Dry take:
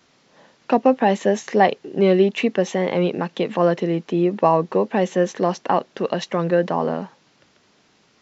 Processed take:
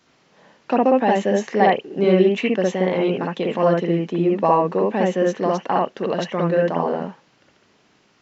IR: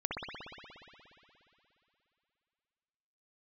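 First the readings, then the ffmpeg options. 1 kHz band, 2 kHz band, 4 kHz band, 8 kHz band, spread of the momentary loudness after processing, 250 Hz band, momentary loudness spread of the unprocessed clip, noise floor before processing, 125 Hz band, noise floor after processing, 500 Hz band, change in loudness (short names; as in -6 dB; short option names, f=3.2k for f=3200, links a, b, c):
+0.5 dB, +0.5 dB, -0.5 dB, n/a, 7 LU, +0.5 dB, 6 LU, -59 dBFS, +0.5 dB, -59 dBFS, +0.5 dB, +0.5 dB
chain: -filter_complex "[1:a]atrim=start_sample=2205,atrim=end_sample=3528[a];[0:a][a]afir=irnorm=-1:irlink=0,volume=-1.5dB"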